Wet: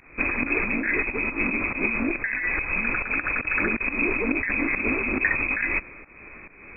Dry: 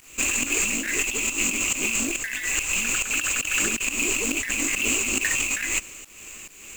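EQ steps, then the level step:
linear-phase brick-wall low-pass 2,600 Hz
+4.5 dB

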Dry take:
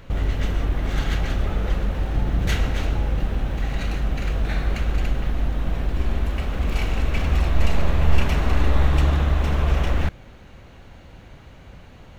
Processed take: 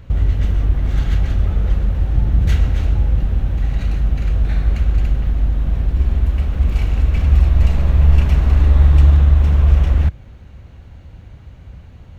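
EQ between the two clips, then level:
parametric band 74 Hz +14 dB 2.4 octaves
−4.0 dB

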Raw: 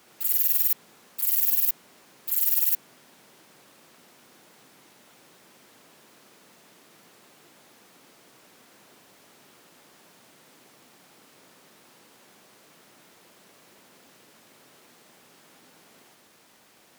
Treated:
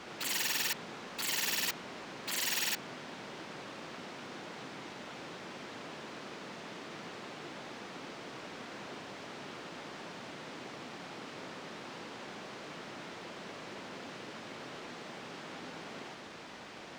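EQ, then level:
high-frequency loss of the air 140 metres
+12.5 dB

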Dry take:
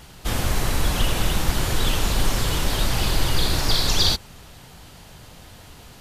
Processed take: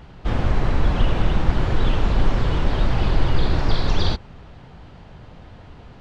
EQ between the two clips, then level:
head-to-tape spacing loss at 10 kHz 35 dB
+4.0 dB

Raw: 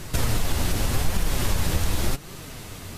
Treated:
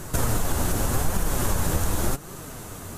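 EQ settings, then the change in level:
low-shelf EQ 160 Hz −5 dB
flat-topped bell 3,200 Hz −8.5 dB
+3.0 dB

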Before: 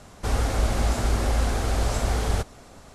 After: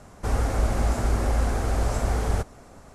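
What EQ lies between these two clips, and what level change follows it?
parametric band 3,600 Hz −7.5 dB 1.2 octaves
high-shelf EQ 7,700 Hz −4 dB
0.0 dB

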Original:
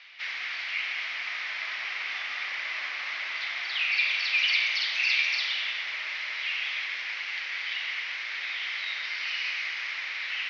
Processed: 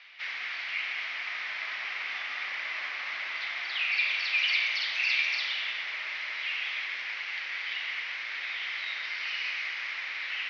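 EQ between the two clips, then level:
high-shelf EQ 3,800 Hz −6.5 dB
0.0 dB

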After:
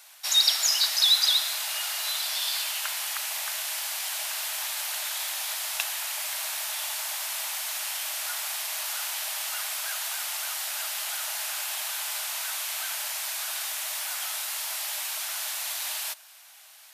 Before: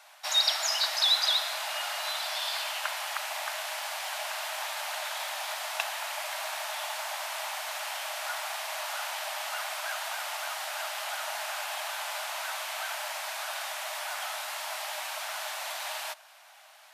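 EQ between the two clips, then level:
spectral tilt +4.5 dB per octave
−5.0 dB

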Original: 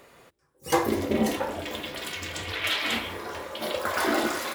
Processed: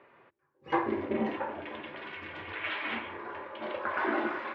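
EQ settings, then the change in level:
loudspeaker in its box 180–2,200 Hz, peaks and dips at 180 Hz −10 dB, 270 Hz −7 dB, 480 Hz −9 dB, 700 Hz −7 dB, 1,300 Hz −5 dB, 2,000 Hz −4 dB
0.0 dB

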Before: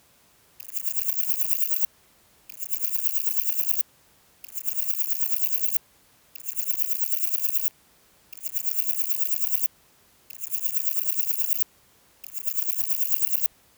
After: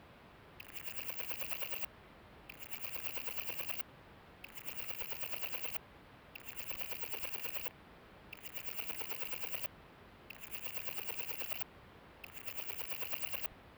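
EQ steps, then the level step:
high-frequency loss of the air 440 metres
high-shelf EQ 7,600 Hz +6 dB
+7.0 dB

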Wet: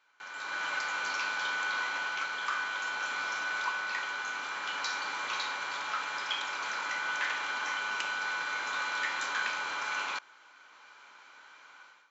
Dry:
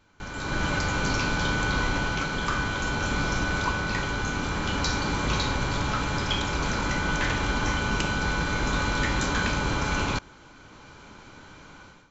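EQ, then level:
high-pass filter 1,300 Hz 12 dB per octave
high-shelf EQ 3,000 Hz −12 dB
+1.5 dB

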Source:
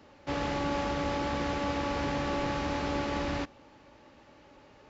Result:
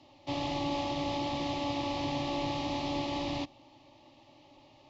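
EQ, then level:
high-frequency loss of the air 62 metres
parametric band 3,600 Hz +7.5 dB 1.2 octaves
phaser with its sweep stopped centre 300 Hz, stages 8
0.0 dB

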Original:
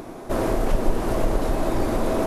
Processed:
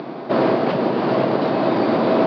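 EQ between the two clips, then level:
Chebyshev band-pass filter 130–4,700 Hz, order 5
+7.5 dB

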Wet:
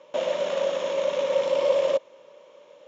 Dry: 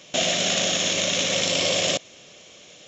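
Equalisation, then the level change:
pair of resonant band-passes 720 Hz, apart 0.72 octaves
+8.5 dB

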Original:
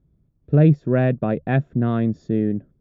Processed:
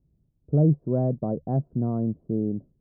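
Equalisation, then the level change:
Butterworth low-pass 990 Hz 36 dB per octave
high-frequency loss of the air 390 metres
−5.0 dB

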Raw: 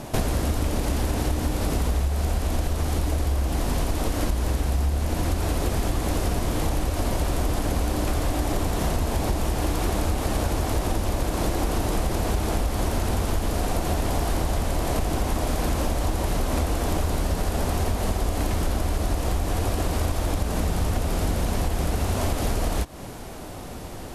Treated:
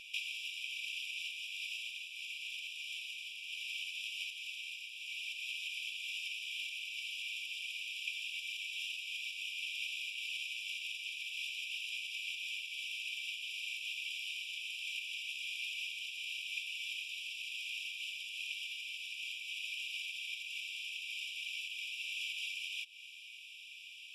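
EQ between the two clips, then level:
Savitzky-Golay smoothing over 25 samples
linear-phase brick-wall high-pass 2,300 Hz
spectral tilt −2.5 dB per octave
+9.5 dB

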